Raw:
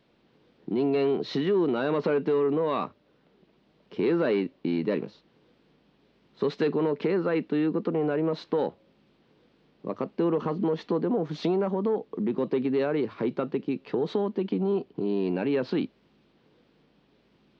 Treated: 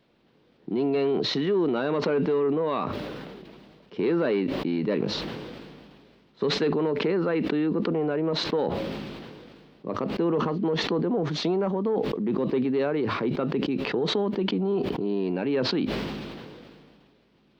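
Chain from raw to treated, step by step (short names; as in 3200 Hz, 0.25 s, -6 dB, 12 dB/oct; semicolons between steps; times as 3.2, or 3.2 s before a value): sustainer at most 27 dB/s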